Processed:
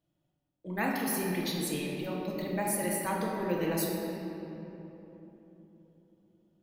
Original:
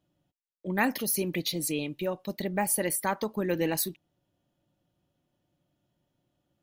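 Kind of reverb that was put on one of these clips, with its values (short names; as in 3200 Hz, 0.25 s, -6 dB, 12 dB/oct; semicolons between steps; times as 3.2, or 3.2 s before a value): shoebox room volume 210 m³, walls hard, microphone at 0.67 m; gain -7 dB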